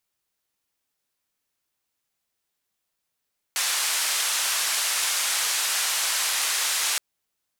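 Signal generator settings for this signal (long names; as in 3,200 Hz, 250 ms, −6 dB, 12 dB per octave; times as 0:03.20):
band-limited noise 970–10,000 Hz, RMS −25 dBFS 3.42 s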